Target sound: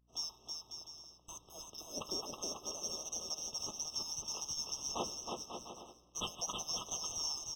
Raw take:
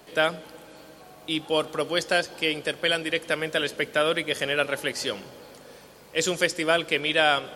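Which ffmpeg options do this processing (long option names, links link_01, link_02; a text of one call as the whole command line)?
ffmpeg -i in.wav -filter_complex "[0:a]afftfilt=real='real(if(lt(b,736),b+184*(1-2*mod(floor(b/184),2)),b),0)':imag='imag(if(lt(b,736),b+184*(1-2*mod(floor(b/184),2)),b),0)':win_size=2048:overlap=0.75,acrossover=split=290[link_01][link_02];[link_02]adynamicsmooth=sensitivity=6:basefreq=4000[link_03];[link_01][link_03]amix=inputs=2:normalize=0,agate=range=-33dB:threshold=-41dB:ratio=3:detection=peak,highshelf=frequency=5500:gain=7,acompressor=threshold=-34dB:ratio=2,aemphasis=mode=reproduction:type=75kf,aeval=exprs='val(0)+0.000178*(sin(2*PI*60*n/s)+sin(2*PI*2*60*n/s)/2+sin(2*PI*3*60*n/s)/3+sin(2*PI*4*60*n/s)/4+sin(2*PI*5*60*n/s)/5)':channel_layout=same,asplit=2[link_04][link_05];[link_05]aecho=0:1:320|544|700.8|810.6|887.4:0.631|0.398|0.251|0.158|0.1[link_06];[link_04][link_06]amix=inputs=2:normalize=0,afftfilt=real='re*eq(mod(floor(b*sr/1024/1300),2),0)':imag='im*eq(mod(floor(b*sr/1024/1300),2),0)':win_size=1024:overlap=0.75,volume=2.5dB" out.wav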